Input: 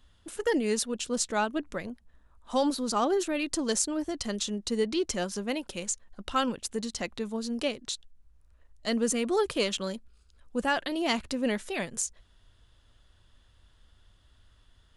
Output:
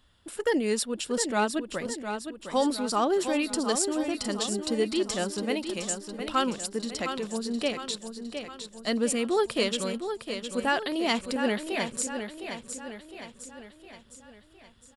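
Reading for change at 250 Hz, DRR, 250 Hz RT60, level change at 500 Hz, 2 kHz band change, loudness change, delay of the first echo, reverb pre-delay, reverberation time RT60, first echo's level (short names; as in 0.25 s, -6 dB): +1.5 dB, none, none, +2.0 dB, +2.5 dB, +1.0 dB, 0.71 s, none, none, -8.0 dB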